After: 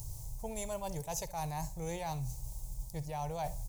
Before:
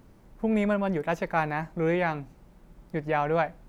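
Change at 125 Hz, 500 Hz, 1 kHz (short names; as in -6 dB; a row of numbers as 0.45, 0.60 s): -6.0, -13.5, -10.5 dB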